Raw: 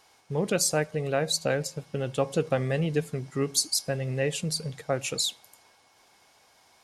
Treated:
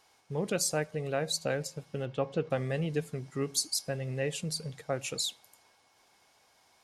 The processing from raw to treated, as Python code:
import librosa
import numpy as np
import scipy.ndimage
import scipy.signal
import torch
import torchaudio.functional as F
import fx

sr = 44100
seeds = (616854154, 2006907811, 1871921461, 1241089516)

y = fx.lowpass(x, sr, hz=3400.0, slope=12, at=(2.05, 2.49), fade=0.02)
y = y * librosa.db_to_amplitude(-5.0)